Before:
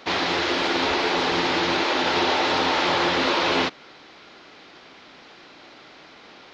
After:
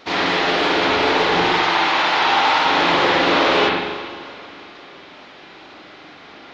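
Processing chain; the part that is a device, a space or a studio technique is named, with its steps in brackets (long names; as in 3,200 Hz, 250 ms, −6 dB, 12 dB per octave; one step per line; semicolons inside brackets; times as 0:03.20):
multi-head tape echo (echo machine with several playback heads 163 ms, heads first and second, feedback 61%, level −20 dB; tape wow and flutter 13 cents)
0:01.47–0:02.66: low shelf with overshoot 640 Hz −7 dB, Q 1.5
spring reverb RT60 1.1 s, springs 41/51 ms, chirp 25 ms, DRR −4.5 dB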